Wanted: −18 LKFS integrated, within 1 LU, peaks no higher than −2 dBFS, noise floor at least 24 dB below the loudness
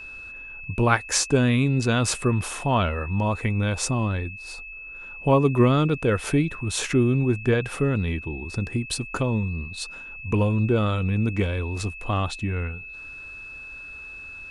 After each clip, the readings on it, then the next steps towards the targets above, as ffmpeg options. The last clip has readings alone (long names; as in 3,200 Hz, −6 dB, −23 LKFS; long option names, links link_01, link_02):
interfering tone 2,600 Hz; level of the tone −37 dBFS; integrated loudness −24.0 LKFS; sample peak −3.5 dBFS; target loudness −18.0 LKFS
→ -af "bandreject=frequency=2600:width=30"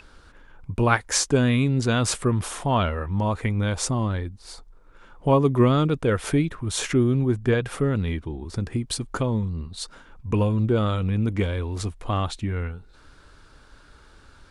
interfering tone none found; integrated loudness −24.0 LKFS; sample peak −4.0 dBFS; target loudness −18.0 LKFS
→ -af "volume=6dB,alimiter=limit=-2dB:level=0:latency=1"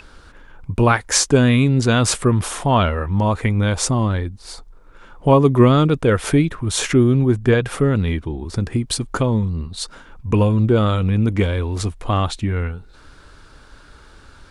integrated loudness −18.0 LKFS; sample peak −2.0 dBFS; background noise floor −46 dBFS